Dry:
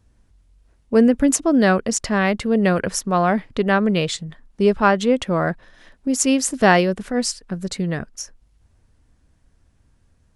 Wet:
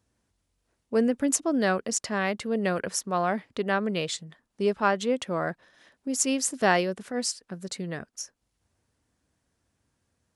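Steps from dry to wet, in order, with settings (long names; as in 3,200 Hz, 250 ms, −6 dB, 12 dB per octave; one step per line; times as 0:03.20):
high-pass filter 91 Hz 12 dB per octave
bass and treble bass −5 dB, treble +3 dB
level −7.5 dB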